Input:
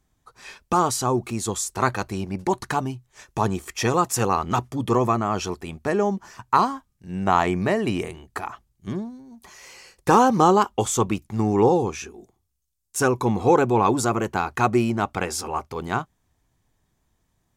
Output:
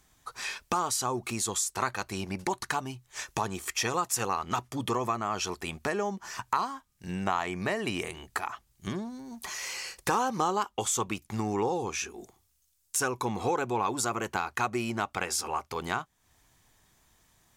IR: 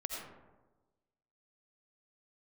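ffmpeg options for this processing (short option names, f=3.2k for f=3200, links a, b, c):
-af "tiltshelf=f=720:g=-5.5,acompressor=threshold=-40dB:ratio=2.5,volume=6dB"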